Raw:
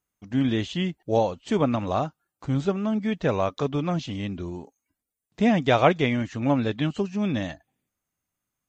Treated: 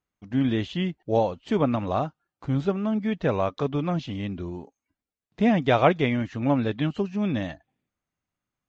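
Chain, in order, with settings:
high-frequency loss of the air 120 metres

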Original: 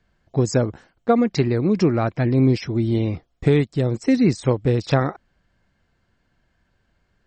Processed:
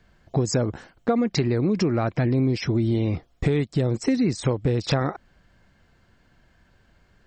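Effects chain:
in parallel at +2 dB: brickwall limiter −16.5 dBFS, peak gain reduction 11 dB
on the sum: downward compressor 4 to 1, threshold −20 dBFS, peak gain reduction 10 dB

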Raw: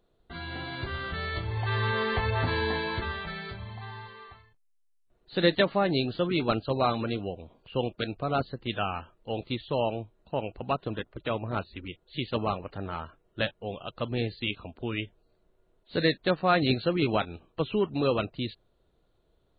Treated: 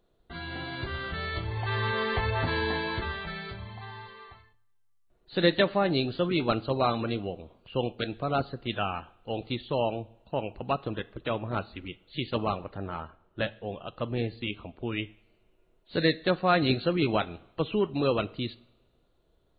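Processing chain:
0:12.63–0:14.92: high-shelf EQ 4,200 Hz −12 dB
coupled-rooms reverb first 0.59 s, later 1.9 s, DRR 17 dB

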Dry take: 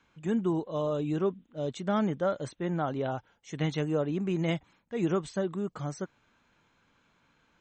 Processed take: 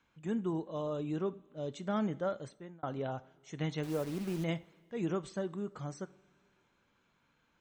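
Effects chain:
0:03.83–0:04.44: hold until the input has moved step −36.5 dBFS
coupled-rooms reverb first 0.46 s, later 3.1 s, from −19 dB, DRR 14.5 dB
0:02.29–0:02.83: fade out
level −6 dB

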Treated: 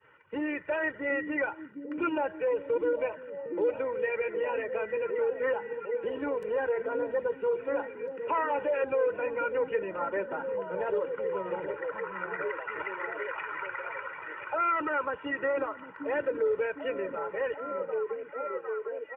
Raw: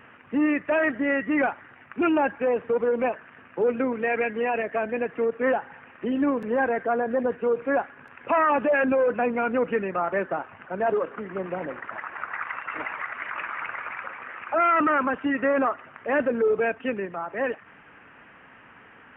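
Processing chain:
spectral magnitudes quantised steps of 15 dB
downward expander −41 dBFS
comb filter 2.1 ms, depth 85%
echo through a band-pass that steps 756 ms, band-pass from 220 Hz, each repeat 0.7 octaves, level −3 dB
multiband upward and downward compressor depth 40%
level −9 dB

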